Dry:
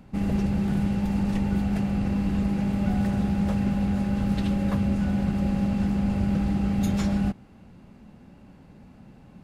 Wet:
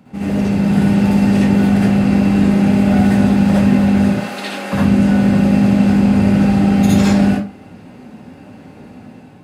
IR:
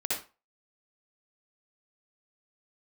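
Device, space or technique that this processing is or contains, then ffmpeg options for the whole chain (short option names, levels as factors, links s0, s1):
far laptop microphone: -filter_complex "[0:a]asettb=1/sr,asplit=3[s0][s1][s2];[s0]atrim=end=4.124[s3];[s1]atrim=start=4.12:end=4.73,asetpts=PTS-STARTPTS,afade=t=in:d=0.004:c=qsin,afade=t=out:st=0.606:d=0.004:c=qsin,highpass=620[s4];[s2]atrim=start=4.726[s5];[s3][s4]acrossfade=d=0.004:c1=hsin:c2=qsin[s6];[s6][s5]acrossfade=d=0.004:c1=qsin:c2=hsin[s7];[1:a]atrim=start_sample=2205[s8];[s7][s8]afir=irnorm=-1:irlink=0,highpass=110,dynaudnorm=f=260:g=5:m=1.78,volume=1.58"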